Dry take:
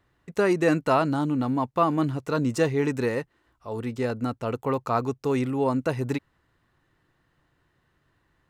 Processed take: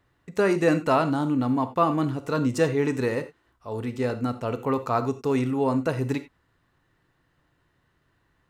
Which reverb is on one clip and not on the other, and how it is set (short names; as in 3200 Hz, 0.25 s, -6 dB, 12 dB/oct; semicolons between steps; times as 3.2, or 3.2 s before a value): non-linear reverb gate 0.11 s flat, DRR 10 dB